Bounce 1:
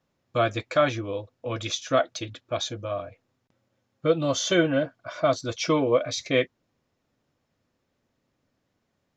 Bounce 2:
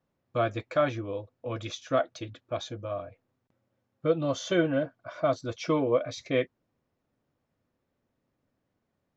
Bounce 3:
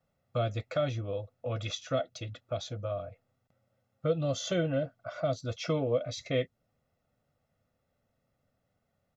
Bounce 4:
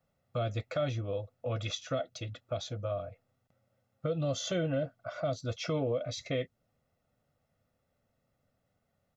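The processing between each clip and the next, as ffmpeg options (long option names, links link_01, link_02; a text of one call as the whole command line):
ffmpeg -i in.wav -af "highshelf=frequency=2700:gain=-10,volume=-3dB" out.wav
ffmpeg -i in.wav -filter_complex "[0:a]aecho=1:1:1.5:0.62,acrossover=split=460|2600[link_01][link_02][link_03];[link_02]acompressor=threshold=-37dB:ratio=6[link_04];[link_01][link_04][link_03]amix=inputs=3:normalize=0" out.wav
ffmpeg -i in.wav -af "alimiter=limit=-23dB:level=0:latency=1:release=59" out.wav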